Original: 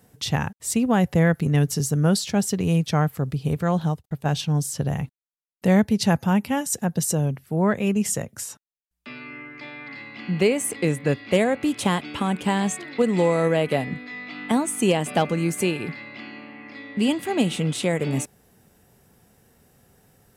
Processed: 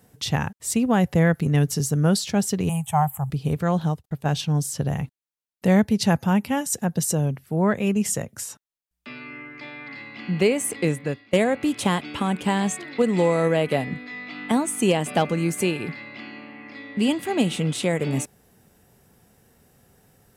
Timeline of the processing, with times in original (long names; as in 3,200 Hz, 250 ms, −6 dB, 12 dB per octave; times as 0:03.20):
0:02.69–0:03.30: drawn EQ curve 140 Hz 0 dB, 290 Hz −23 dB, 500 Hz −16 dB, 810 Hz +12 dB, 1,500 Hz −8 dB, 3,100 Hz −4 dB, 4,700 Hz −29 dB, 7,600 Hz +9 dB
0:10.87–0:11.33: fade out linear, to −22 dB